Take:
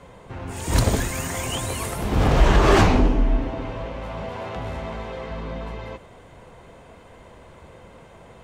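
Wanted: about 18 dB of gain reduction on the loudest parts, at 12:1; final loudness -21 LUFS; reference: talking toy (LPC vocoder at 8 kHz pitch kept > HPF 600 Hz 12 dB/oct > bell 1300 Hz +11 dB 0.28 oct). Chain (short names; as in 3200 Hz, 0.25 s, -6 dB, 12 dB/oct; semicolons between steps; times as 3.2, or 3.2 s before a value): compressor 12:1, threshold -28 dBFS; LPC vocoder at 8 kHz pitch kept; HPF 600 Hz 12 dB/oct; bell 1300 Hz +11 dB 0.28 oct; gain +15.5 dB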